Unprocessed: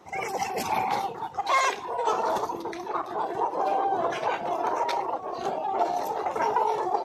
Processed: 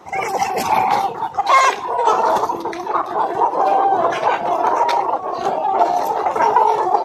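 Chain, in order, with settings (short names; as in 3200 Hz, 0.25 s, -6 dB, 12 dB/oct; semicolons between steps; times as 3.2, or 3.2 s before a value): bell 1000 Hz +4 dB 1.4 oct; gain +7.5 dB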